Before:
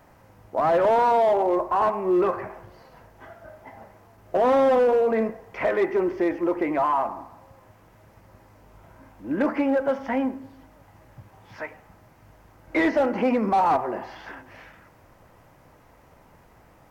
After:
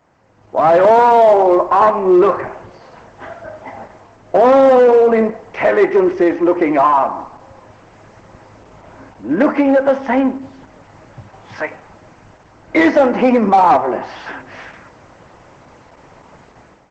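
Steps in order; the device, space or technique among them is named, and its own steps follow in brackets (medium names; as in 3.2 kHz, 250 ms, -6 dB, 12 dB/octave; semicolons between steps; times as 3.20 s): video call (high-pass 120 Hz 6 dB/octave; level rider gain up to 15 dB; trim -1 dB; Opus 12 kbps 48 kHz)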